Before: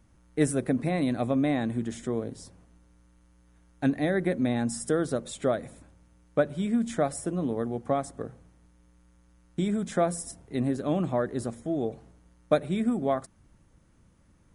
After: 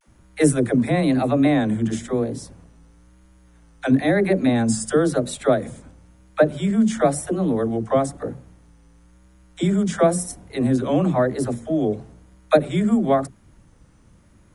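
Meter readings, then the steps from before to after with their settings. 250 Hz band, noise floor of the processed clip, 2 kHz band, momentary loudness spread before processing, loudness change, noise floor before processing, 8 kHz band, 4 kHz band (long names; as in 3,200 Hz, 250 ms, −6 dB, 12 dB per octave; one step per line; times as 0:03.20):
+8.0 dB, −53 dBFS, +8.0 dB, 8 LU, +8.0 dB, −61 dBFS, +8.0 dB, +8.0 dB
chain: all-pass dispersion lows, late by 72 ms, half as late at 370 Hz
pitch vibrato 0.99 Hz 92 cents
level +8 dB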